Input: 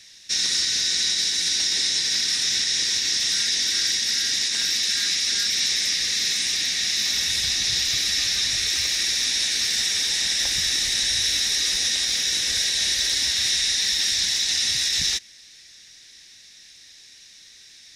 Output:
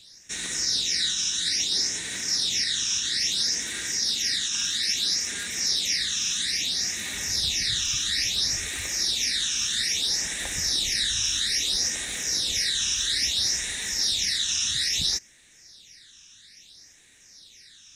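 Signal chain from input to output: phase shifter stages 8, 0.6 Hz, lowest notch 590–4900 Hz

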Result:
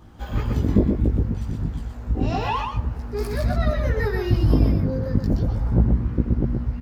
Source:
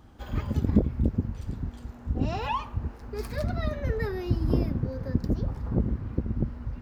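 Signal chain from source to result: chorus voices 2, 0.31 Hz, delay 18 ms, depth 1.5 ms; delay 124 ms -5 dB; 3.67–4.55 s: tape noise reduction on one side only encoder only; trim +8 dB

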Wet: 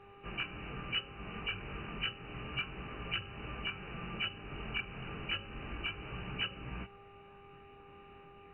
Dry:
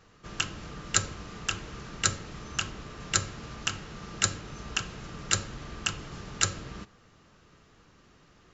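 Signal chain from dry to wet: knee-point frequency compression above 2.2 kHz 4:1; compression 6:1, threshold -33 dBFS, peak gain reduction 16 dB; chorus voices 2, 0.31 Hz, delay 20 ms, depth 4.2 ms; mains buzz 400 Hz, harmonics 3, -59 dBFS -3 dB/octave; trim +1.5 dB

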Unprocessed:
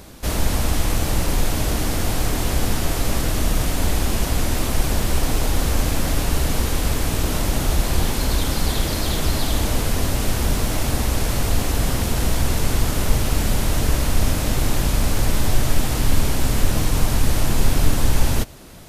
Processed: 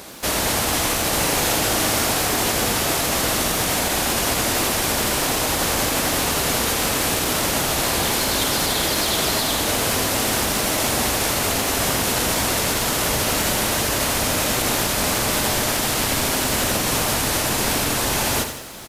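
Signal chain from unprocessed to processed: high-pass 490 Hz 6 dB/octave; peak limiter -19 dBFS, peak gain reduction 4.5 dB; 1.09–2.07 s: doubling 39 ms -5 dB; delay 1158 ms -20.5 dB; bit-crushed delay 84 ms, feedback 55%, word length 8-bit, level -8 dB; trim +7.5 dB

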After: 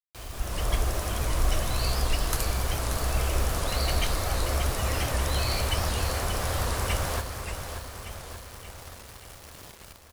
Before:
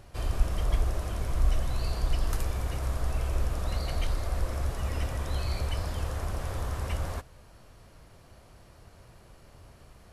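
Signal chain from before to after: tilt EQ +1.5 dB/octave; level rider gain up to 15 dB; bit crusher 6-bit; feedback delay 582 ms, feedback 57%, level -8 dB; warped record 78 rpm, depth 160 cents; trim -7.5 dB

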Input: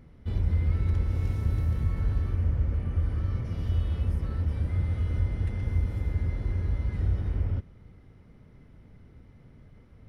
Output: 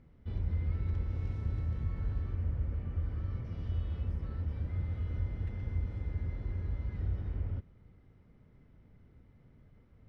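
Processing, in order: distance through air 99 m; trim -7.5 dB

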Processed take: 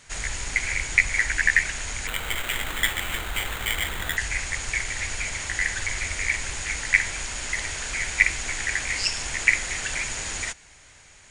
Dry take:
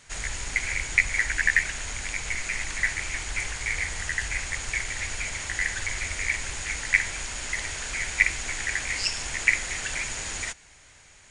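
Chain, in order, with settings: 2.07–4.17 s: sample-rate reducer 5.3 kHz, jitter 0%; trim +2 dB

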